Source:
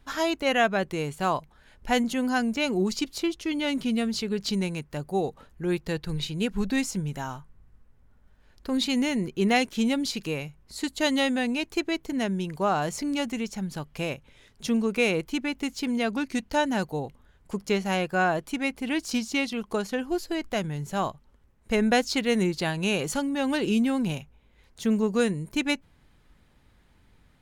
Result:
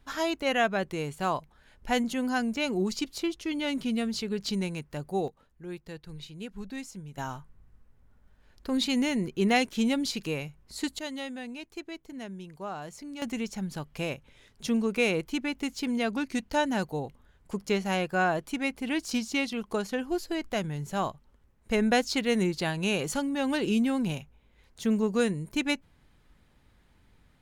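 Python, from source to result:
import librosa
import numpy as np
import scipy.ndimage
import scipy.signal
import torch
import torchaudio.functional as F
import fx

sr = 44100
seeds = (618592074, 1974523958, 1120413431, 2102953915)

y = fx.gain(x, sr, db=fx.steps((0.0, -3.0), (5.28, -12.5), (7.18, -1.5), (10.99, -12.5), (13.22, -2.0)))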